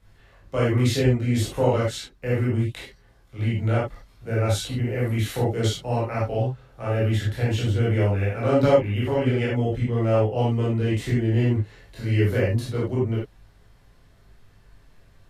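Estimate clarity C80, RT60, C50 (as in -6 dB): 7.0 dB, not exponential, 0.5 dB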